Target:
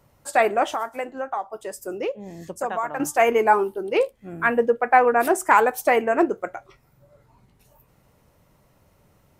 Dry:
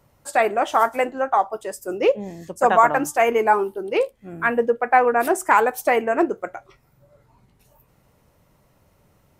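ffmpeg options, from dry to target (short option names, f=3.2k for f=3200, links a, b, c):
-filter_complex "[0:a]asettb=1/sr,asplit=3[a][b][c];[a]atrim=end=0.734[d];[b]atrim=start=0.73:end=3,asetpts=PTS-STARTPTS,afade=t=in:d=0.004:c=qsin,afade=t=out:st=2.266:d=0.004:c=qsin,acompressor=threshold=-29dB:ratio=2.5[e];[c]atrim=start=2.996[f];[d][e]acrossfade=d=0.004:c1=hsin:c2=qsin[g];[g][f]acrossfade=d=0.004:c1=qsin:c2=hsin"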